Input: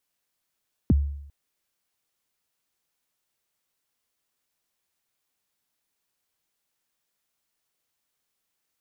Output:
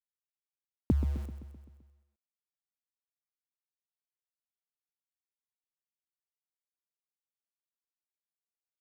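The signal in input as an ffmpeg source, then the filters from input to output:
-f lavfi -i "aevalsrc='0.224*pow(10,-3*t/0.75)*sin(2*PI*(330*0.027/log(71/330)*(exp(log(71/330)*min(t,0.027)/0.027)-1)+71*max(t-0.027,0)))':duration=0.4:sample_rate=44100"
-af "acompressor=threshold=-24dB:ratio=5,aeval=exprs='val(0)*gte(abs(val(0)),0.00841)':channel_layout=same,aecho=1:1:129|258|387|516|645|774|903:0.282|0.163|0.0948|0.055|0.0319|0.0185|0.0107"

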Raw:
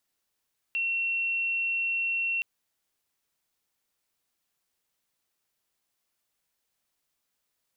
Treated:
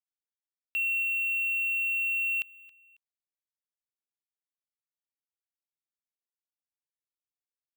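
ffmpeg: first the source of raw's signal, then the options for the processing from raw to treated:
-f lavfi -i "sine=frequency=2720:duration=1.67:sample_rate=44100,volume=-7.44dB"
-af "acrusher=bits=5:mix=0:aa=0.5,aecho=1:1:273|546:0.0891|0.0258"

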